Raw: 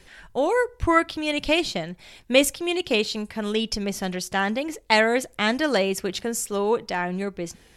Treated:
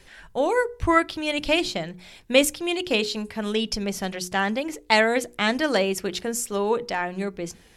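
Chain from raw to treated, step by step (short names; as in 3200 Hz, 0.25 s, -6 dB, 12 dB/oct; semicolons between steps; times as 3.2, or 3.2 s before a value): notches 60/120/180/240/300/360/420/480 Hz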